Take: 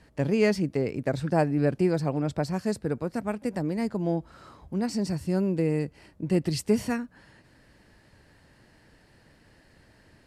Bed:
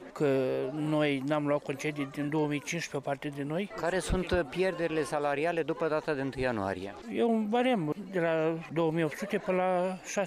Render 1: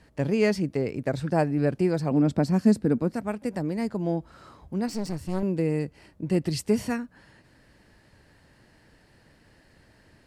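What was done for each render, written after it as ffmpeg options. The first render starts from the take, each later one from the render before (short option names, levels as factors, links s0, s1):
-filter_complex "[0:a]asettb=1/sr,asplit=3[s0][s1][s2];[s0]atrim=end=2.114[s3];[s1]atrim=start=2.11:end=3.14,asetpts=PTS-STARTPTS,afade=t=in:d=0.004:c=qsin,afade=t=out:st=1.026:d=0.004:c=qsin,equalizer=f=240:t=o:w=0.96:g=12.5[s4];[s2]atrim=start=3.136[s5];[s3][s4]acrossfade=d=0.004:c1=hsin:c2=qsin[s6];[s6][s5]acrossfade=d=0.004:c1=qsin:c2=hsin,asettb=1/sr,asplit=3[s7][s8][s9];[s7]atrim=end=4.884[s10];[s8]atrim=start=4.88:end=5.43,asetpts=PTS-STARTPTS,afade=t=in:d=0.004:c=qsin,afade=t=out:st=0.546:d=0.004:c=qsin,aeval=exprs='clip(val(0),-1,0.0126)':c=same[s11];[s9]atrim=start=5.426[s12];[s10][s11]acrossfade=d=0.004:c1=hsin:c2=qsin[s13];[s13][s12]acrossfade=d=0.004:c1=qsin:c2=hsin"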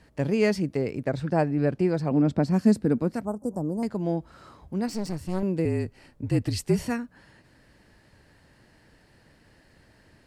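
-filter_complex "[0:a]asettb=1/sr,asplit=3[s0][s1][s2];[s0]atrim=end=1.044[s3];[s1]atrim=start=1.04:end=2.51,asetpts=PTS-STARTPTS,afade=t=in:d=0.004:c=qsin,afade=t=out:st=1.466:d=0.004:c=qsin,highshelf=f=7400:g=-11[s4];[s2]atrim=start=2.506[s5];[s3][s4]acrossfade=d=0.004:c1=hsin:c2=qsin[s6];[s6][s5]acrossfade=d=0.004:c1=qsin:c2=hsin,asettb=1/sr,asplit=3[s7][s8][s9];[s7]atrim=end=3.254[s10];[s8]atrim=start=3.25:end=3.83,asetpts=PTS-STARTPTS,afade=t=in:d=0.004:c=qsin,afade=t=out:st=0.576:d=0.004:c=qsin,asuperstop=centerf=2700:order=8:qfactor=0.54[s11];[s9]atrim=start=3.826[s12];[s10][s11]acrossfade=d=0.004:c1=hsin:c2=qsin[s13];[s13][s12]acrossfade=d=0.004:c1=qsin:c2=hsin,asettb=1/sr,asplit=3[s14][s15][s16];[s14]atrim=end=5.654[s17];[s15]atrim=start=5.65:end=6.86,asetpts=PTS-STARTPTS,afade=t=in:d=0.004:c=qsin,afade=t=out:st=1.206:d=0.004:c=qsin,afreqshift=-43[s18];[s16]atrim=start=6.856[s19];[s17][s18]acrossfade=d=0.004:c1=hsin:c2=qsin[s20];[s20][s19]acrossfade=d=0.004:c1=qsin:c2=hsin"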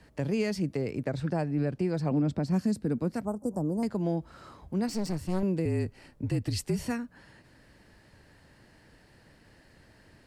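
-filter_complex "[0:a]acrossover=split=180|3000[s0][s1][s2];[s1]acompressor=threshold=0.0355:ratio=2[s3];[s0][s3][s2]amix=inputs=3:normalize=0,alimiter=limit=0.106:level=0:latency=1:release=252"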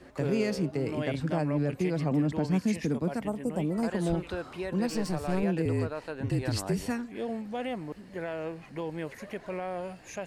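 -filter_complex "[1:a]volume=0.447[s0];[0:a][s0]amix=inputs=2:normalize=0"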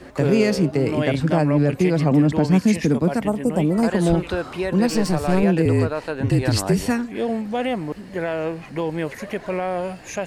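-af "volume=3.35"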